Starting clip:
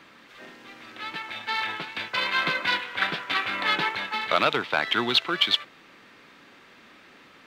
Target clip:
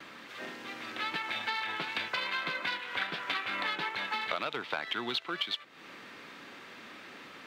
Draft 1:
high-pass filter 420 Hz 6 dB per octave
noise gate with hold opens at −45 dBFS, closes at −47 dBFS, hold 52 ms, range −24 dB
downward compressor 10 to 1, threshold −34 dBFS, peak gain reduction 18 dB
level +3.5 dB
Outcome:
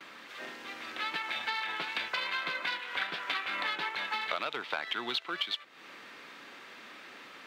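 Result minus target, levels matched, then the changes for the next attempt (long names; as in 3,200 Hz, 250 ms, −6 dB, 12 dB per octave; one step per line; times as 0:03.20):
125 Hz band −6.5 dB
change: high-pass filter 120 Hz 6 dB per octave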